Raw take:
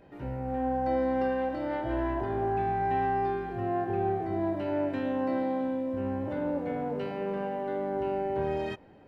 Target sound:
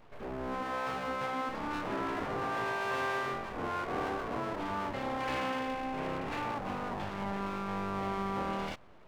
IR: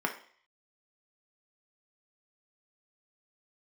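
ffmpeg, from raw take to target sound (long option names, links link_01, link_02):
-filter_complex "[0:a]asettb=1/sr,asplit=3[link_01][link_02][link_03];[link_01]atrim=end=5.204[link_04];[link_02]atrim=start=5.2:end=6.55,asetpts=PTS-STARTPTS,afade=type=in:duration=0.004:curve=qsin,afade=type=out:start_time=1.346:duration=0.004:curve=qsin,lowpass=frequency=2300:width_type=q:width=6.5[link_05];[link_03]atrim=start=6.546[link_06];[link_04][link_05]acrossfade=duration=0.004:curve1=hsin:curve2=qsin[link_07];[link_07][link_06]acrossfade=duration=0.004:curve1=qsin:curve2=hsin,aeval=exprs='abs(val(0))':channel_layout=same,afftfilt=real='re*lt(hypot(re,im),0.158)':imag='im*lt(hypot(re,im),0.158)':win_size=1024:overlap=0.75"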